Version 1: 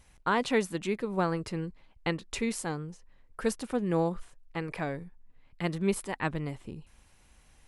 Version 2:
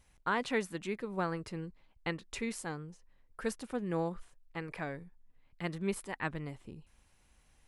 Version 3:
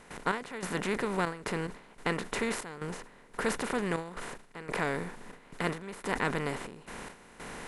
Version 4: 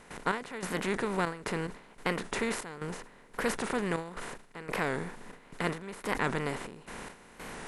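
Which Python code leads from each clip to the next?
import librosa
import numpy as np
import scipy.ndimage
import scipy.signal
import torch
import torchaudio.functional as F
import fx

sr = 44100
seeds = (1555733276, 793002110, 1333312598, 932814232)

y1 = fx.dynamic_eq(x, sr, hz=1700.0, q=1.3, threshold_db=-44.0, ratio=4.0, max_db=4)
y1 = F.gain(torch.from_numpy(y1), -6.5).numpy()
y2 = fx.bin_compress(y1, sr, power=0.4)
y2 = fx.step_gate(y2, sr, bpm=144, pattern='.xx...xxxxxx.', floor_db=-12.0, edge_ms=4.5)
y2 = fx.sustainer(y2, sr, db_per_s=130.0)
y3 = fx.record_warp(y2, sr, rpm=45.0, depth_cents=100.0)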